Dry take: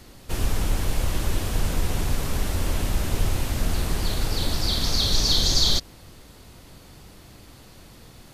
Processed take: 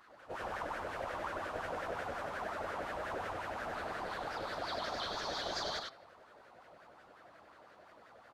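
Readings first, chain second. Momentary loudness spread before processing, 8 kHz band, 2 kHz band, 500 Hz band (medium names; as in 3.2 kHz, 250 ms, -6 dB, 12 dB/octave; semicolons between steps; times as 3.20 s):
8 LU, -24.0 dB, -5.0 dB, -5.5 dB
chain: de-hum 135.9 Hz, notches 40; pre-echo 109 ms -17 dB; wah-wah 5.6 Hz 580–1600 Hz, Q 4.4; on a send: delay 97 ms -4 dB; on the sum: vibrato with a chosen wave saw up 4.8 Hz, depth 100 cents; trim +3 dB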